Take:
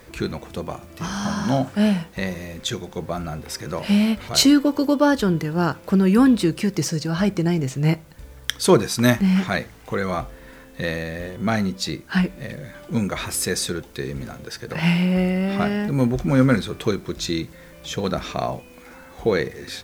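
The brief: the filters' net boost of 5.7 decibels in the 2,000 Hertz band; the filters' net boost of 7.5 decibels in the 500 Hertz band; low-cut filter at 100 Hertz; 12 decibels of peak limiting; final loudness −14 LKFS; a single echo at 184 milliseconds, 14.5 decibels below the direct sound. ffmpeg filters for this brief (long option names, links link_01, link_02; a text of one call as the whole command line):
ffmpeg -i in.wav -af "highpass=100,equalizer=frequency=500:width_type=o:gain=9,equalizer=frequency=2000:width_type=o:gain=6.5,alimiter=limit=-9dB:level=0:latency=1,aecho=1:1:184:0.188,volume=7.5dB" out.wav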